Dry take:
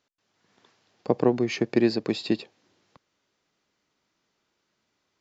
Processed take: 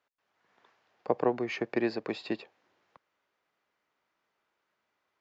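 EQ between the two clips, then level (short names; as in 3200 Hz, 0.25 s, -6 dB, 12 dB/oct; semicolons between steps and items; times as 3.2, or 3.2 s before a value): three-band isolator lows -12 dB, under 490 Hz, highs -14 dB, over 2600 Hz; 0.0 dB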